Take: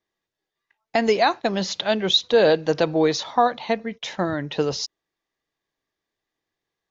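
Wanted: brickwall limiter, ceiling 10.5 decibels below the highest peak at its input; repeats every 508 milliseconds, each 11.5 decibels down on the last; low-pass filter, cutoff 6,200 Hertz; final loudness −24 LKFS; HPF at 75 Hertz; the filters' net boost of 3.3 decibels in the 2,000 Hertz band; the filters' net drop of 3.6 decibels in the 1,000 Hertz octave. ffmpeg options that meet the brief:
ffmpeg -i in.wav -af "highpass=75,lowpass=6200,equalizer=frequency=1000:width_type=o:gain=-7,equalizer=frequency=2000:width_type=o:gain=6.5,alimiter=limit=-16dB:level=0:latency=1,aecho=1:1:508|1016|1524:0.266|0.0718|0.0194,volume=3dB" out.wav

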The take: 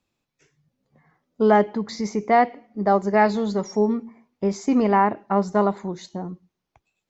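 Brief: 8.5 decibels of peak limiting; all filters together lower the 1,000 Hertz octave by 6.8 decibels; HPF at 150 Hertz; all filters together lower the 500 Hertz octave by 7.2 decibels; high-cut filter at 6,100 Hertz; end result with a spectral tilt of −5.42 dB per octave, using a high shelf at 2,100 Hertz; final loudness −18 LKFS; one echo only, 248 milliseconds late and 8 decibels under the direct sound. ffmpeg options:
ffmpeg -i in.wav -af "highpass=150,lowpass=6100,equalizer=frequency=500:width_type=o:gain=-8,equalizer=frequency=1000:width_type=o:gain=-6.5,highshelf=frequency=2100:gain=4.5,alimiter=limit=-18dB:level=0:latency=1,aecho=1:1:248:0.398,volume=11.5dB" out.wav

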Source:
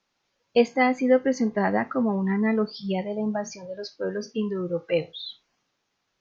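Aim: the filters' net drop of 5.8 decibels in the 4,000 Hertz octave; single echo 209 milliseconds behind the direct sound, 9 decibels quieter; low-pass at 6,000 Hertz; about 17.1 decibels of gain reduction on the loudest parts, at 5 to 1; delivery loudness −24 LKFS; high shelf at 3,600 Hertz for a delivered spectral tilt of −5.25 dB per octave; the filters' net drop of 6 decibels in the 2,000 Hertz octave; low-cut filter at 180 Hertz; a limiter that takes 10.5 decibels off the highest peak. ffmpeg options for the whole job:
ffmpeg -i in.wav -af "highpass=180,lowpass=6000,equalizer=frequency=2000:width_type=o:gain=-6,highshelf=frequency=3600:gain=3,equalizer=frequency=4000:width_type=o:gain=-6.5,acompressor=threshold=-34dB:ratio=5,alimiter=level_in=6.5dB:limit=-24dB:level=0:latency=1,volume=-6.5dB,aecho=1:1:209:0.355,volume=16dB" out.wav

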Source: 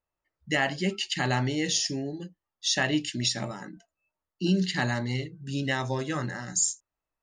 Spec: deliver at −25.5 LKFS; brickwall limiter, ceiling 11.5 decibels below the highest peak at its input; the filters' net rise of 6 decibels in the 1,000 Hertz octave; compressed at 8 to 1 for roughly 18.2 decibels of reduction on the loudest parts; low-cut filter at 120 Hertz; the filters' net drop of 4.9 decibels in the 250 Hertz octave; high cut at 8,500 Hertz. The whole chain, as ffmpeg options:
ffmpeg -i in.wav -af "highpass=120,lowpass=8500,equalizer=frequency=250:width_type=o:gain=-7,equalizer=frequency=1000:width_type=o:gain=8.5,acompressor=threshold=-38dB:ratio=8,volume=20dB,alimiter=limit=-15.5dB:level=0:latency=1" out.wav

